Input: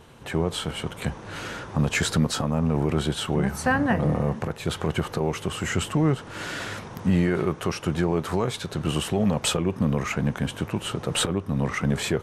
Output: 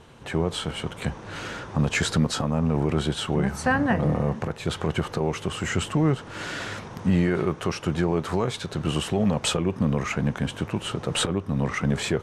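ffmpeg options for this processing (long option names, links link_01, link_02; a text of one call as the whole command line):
ffmpeg -i in.wav -af "lowpass=9100" out.wav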